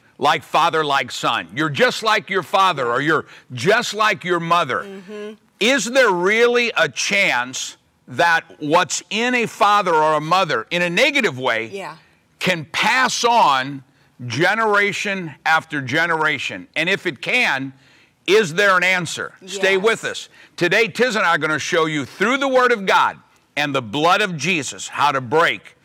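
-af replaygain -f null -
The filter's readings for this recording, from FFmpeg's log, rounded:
track_gain = -2.2 dB
track_peak = 0.471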